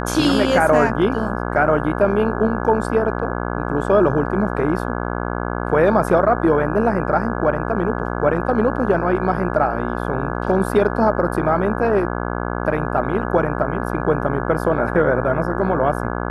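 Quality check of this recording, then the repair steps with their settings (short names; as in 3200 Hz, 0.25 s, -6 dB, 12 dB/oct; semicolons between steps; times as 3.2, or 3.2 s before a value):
buzz 60 Hz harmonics 28 -24 dBFS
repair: de-hum 60 Hz, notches 28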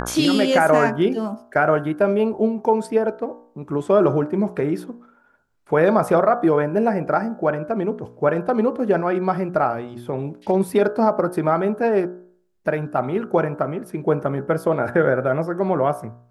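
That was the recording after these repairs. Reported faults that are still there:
none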